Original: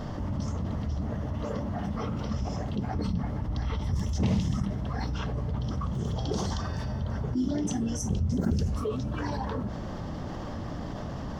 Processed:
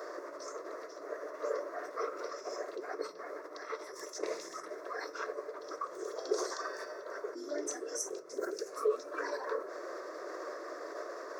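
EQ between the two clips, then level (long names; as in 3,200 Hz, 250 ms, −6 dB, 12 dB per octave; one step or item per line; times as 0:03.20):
elliptic high-pass filter 360 Hz, stop band 80 dB
phaser with its sweep stopped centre 830 Hz, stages 6
+3.0 dB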